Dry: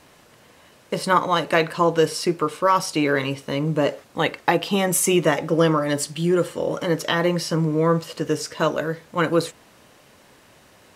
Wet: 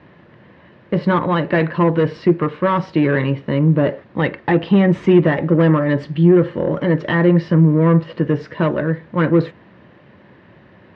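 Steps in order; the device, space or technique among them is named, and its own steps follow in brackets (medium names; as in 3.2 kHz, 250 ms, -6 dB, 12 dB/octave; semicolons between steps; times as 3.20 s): guitar amplifier (valve stage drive 16 dB, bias 0.3; tone controls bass +13 dB, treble -11 dB; cabinet simulation 89–4100 Hz, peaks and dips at 190 Hz +5 dB, 350 Hz +8 dB, 560 Hz +5 dB, 980 Hz +4 dB, 1.8 kHz +8 dB)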